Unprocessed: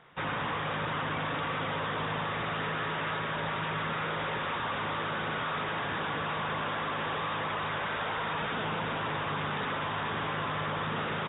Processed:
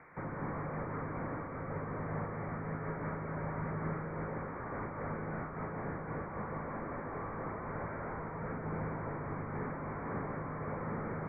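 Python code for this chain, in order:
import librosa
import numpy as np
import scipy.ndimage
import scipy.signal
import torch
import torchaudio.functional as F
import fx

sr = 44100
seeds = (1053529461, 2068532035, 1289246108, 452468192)

y = fx.delta_mod(x, sr, bps=16000, step_db=-49.0)
y = scipy.signal.sosfilt(scipy.signal.cheby1(8, 1.0, 2300.0, 'lowpass', fs=sr, output='sos'), y)
y = y + 10.0 ** (-8.5 / 20.0) * np.pad(y, (int(151 * sr / 1000.0), 0))[:len(y)]
y = fx.am_noise(y, sr, seeds[0], hz=5.7, depth_pct=50)
y = y * librosa.db_to_amplitude(1.5)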